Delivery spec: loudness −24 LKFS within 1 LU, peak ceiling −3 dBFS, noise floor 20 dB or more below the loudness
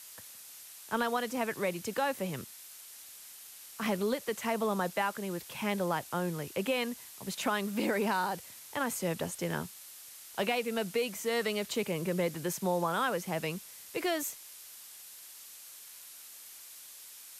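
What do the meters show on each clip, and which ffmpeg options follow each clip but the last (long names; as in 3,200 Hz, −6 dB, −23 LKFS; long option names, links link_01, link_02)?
background noise floor −50 dBFS; target noise floor −54 dBFS; integrated loudness −33.5 LKFS; sample peak −18.0 dBFS; target loudness −24.0 LKFS
→ -af "afftdn=noise_reduction=6:noise_floor=-50"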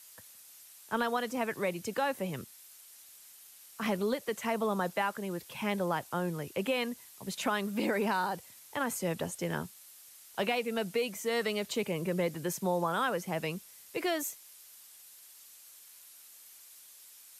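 background noise floor −55 dBFS; integrated loudness −33.5 LKFS; sample peak −18.0 dBFS; target loudness −24.0 LKFS
→ -af "volume=9.5dB"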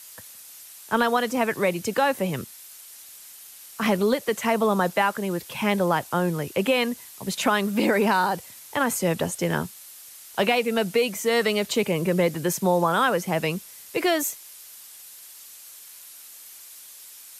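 integrated loudness −24.0 LKFS; sample peak −8.5 dBFS; background noise floor −45 dBFS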